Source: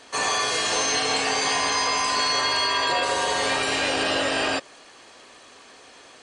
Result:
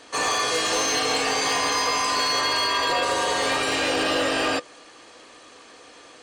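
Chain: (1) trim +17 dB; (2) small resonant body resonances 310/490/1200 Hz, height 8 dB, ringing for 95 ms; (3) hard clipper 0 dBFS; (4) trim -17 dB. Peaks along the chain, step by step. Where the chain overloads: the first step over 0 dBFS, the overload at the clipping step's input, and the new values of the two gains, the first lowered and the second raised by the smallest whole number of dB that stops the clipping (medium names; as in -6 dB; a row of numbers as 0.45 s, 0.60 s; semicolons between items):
+5.0 dBFS, +6.0 dBFS, 0.0 dBFS, -17.0 dBFS; step 1, 6.0 dB; step 1 +11 dB, step 4 -11 dB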